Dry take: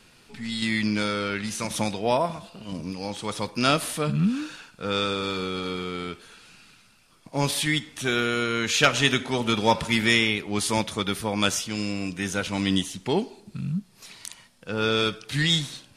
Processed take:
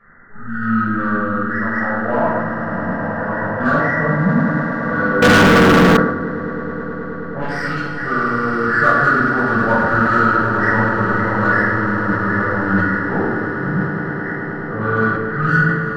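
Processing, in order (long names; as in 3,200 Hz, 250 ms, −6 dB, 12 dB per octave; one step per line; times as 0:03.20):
hearing-aid frequency compression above 1,100 Hz 4 to 1
0:01.35–0:02.08: high-pass filter 390 Hz 12 dB per octave
0:07.39–0:07.85: power curve on the samples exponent 2
in parallel at −6.5 dB: soft clipping −20 dBFS, distortion −10 dB
on the sum: echo that builds up and dies away 106 ms, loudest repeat 8, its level −13.5 dB
rectangular room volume 700 cubic metres, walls mixed, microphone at 5.8 metres
0:05.22–0:05.97: leveller curve on the samples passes 5
level that may fall only so fast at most 61 dB per second
level −9.5 dB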